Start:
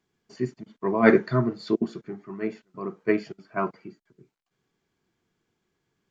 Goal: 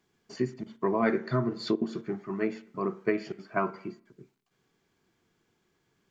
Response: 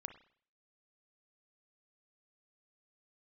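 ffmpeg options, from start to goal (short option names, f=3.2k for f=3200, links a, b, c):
-filter_complex "[0:a]asplit=2[a][b];[1:a]atrim=start_sample=2205,lowshelf=f=180:g=-7.5[c];[b][c]afir=irnorm=-1:irlink=0,volume=0.5dB[d];[a][d]amix=inputs=2:normalize=0,acompressor=threshold=-24dB:ratio=5"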